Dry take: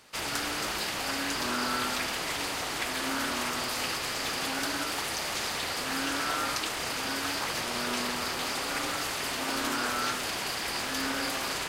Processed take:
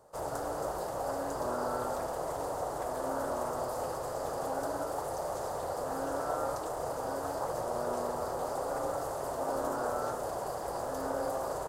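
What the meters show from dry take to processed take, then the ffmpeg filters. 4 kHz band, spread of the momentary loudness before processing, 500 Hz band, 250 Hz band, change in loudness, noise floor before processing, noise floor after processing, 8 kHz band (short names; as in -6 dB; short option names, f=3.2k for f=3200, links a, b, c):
-21.5 dB, 2 LU, +5.5 dB, -5.5 dB, -5.0 dB, -34 dBFS, -38 dBFS, -11.5 dB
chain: -af "firequalizer=gain_entry='entry(140,0);entry(220,-9);entry(540,8);entry(2300,-28);entry(7500,-10)':delay=0.05:min_phase=1"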